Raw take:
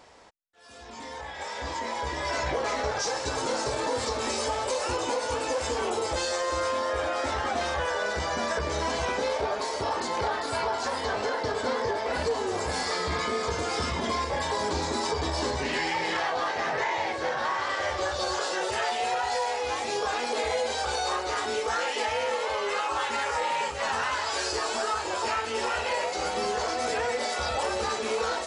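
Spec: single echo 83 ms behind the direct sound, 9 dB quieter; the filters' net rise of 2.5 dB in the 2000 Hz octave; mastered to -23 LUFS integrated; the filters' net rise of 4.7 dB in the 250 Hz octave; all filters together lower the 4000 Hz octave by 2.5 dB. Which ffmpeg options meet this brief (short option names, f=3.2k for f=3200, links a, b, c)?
-af "equalizer=f=250:t=o:g=6,equalizer=f=2k:t=o:g=4,equalizer=f=4k:t=o:g=-4.5,aecho=1:1:83:0.355,volume=4dB"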